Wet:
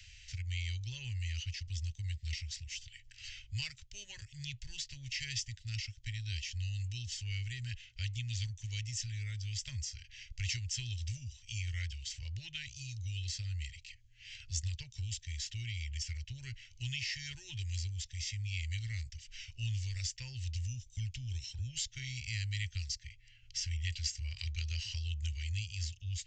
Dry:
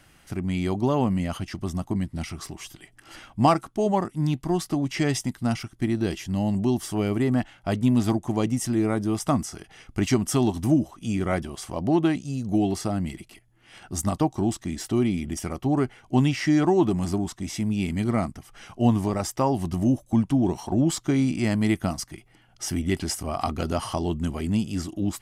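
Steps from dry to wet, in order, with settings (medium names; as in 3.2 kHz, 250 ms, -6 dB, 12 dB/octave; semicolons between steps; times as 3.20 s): inverse Chebyshev band-stop 180–1300 Hz, stop band 40 dB; speed mistake 25 fps video run at 24 fps; resampled via 16 kHz; three bands compressed up and down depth 40%; trim -2.5 dB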